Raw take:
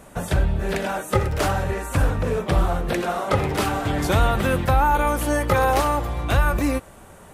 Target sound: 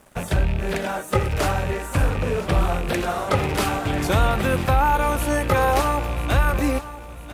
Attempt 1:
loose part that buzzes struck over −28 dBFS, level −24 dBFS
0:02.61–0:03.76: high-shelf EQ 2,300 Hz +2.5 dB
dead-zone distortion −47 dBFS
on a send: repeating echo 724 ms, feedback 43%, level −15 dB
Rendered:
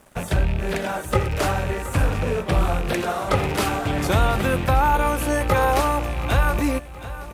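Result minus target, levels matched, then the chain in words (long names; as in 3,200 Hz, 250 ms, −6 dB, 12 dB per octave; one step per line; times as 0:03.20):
echo 272 ms early
loose part that buzzes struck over −28 dBFS, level −24 dBFS
0:02.61–0:03.76: high-shelf EQ 2,300 Hz +2.5 dB
dead-zone distortion −47 dBFS
on a send: repeating echo 996 ms, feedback 43%, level −15 dB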